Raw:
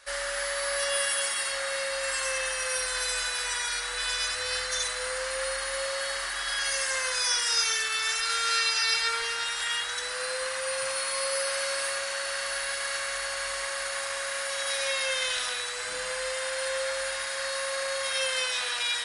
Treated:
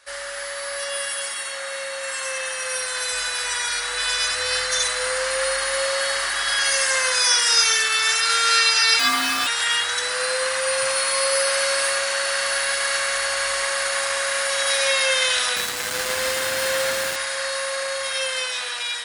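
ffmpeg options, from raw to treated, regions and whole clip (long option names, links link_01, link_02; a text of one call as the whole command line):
ffmpeg -i in.wav -filter_complex "[0:a]asettb=1/sr,asplit=3[link_01][link_02][link_03];[link_01]atrim=end=1.374[link_04];[link_02]atrim=start=1.37:end=3.13,asetpts=PTS-STARTPTS,afade=type=in:duration=0.004:curve=qsin,afade=type=out:start_time=1.756:duration=0.004:curve=qsin,highpass=frequency=100:poles=1,bandreject=frequency=4900:width=14[link_05];[link_03]atrim=start=3.126[link_06];[link_04][link_05]acrossfade=duration=0.004:curve1=hsin:curve2=qsin[link_07];[link_07][link_06]acrossfade=duration=0.004:curve1=qsin:curve2=hsin,asettb=1/sr,asplit=3[link_08][link_09][link_10];[link_08]atrim=end=8.994[link_11];[link_09]atrim=start=8.99:end=9.47,asetpts=PTS-STARTPTS,afade=type=in:duration=0.004:curve=qsin,afade=type=out:start_time=0.476:duration=0.004:curve=qsin,highpass=frequency=110:width=0.5412,highpass=frequency=110:width=1.3066,afreqshift=-200,acrusher=bits=7:dc=4:mix=0:aa=0.000001[link_12];[link_10]atrim=start=9.466[link_13];[link_11][link_12]acrossfade=duration=0.004:curve1=hsin:curve2=qsin[link_14];[link_14][link_13]acrossfade=duration=0.004:curve1=qsin:curve2=hsin,asettb=1/sr,asplit=3[link_15][link_16][link_17];[link_15]atrim=end=15.564[link_18];[link_16]atrim=start=15.56:end=17.16,asetpts=PTS-STARTPTS,afade=type=in:duration=0.004:curve=qsin,afade=type=out:start_time=1.596:duration=0.004:curve=qsin,acrossover=split=9100[link_19][link_20];[link_20]acompressor=threshold=-47dB:ratio=4:attack=1:release=60[link_21];[link_19][link_21]amix=inputs=2:normalize=0,acrusher=bits=4:mix=0:aa=0.5[link_22];[link_17]atrim=start=17.156[link_23];[link_18][link_22]acrossfade=duration=0.004:curve1=hsin:curve2=qsin[link_24];[link_24][link_23]acrossfade=duration=0.004:curve1=qsin:curve2=hsin,dynaudnorm=framelen=1000:gausssize=7:maxgain=9dB,highpass=60" out.wav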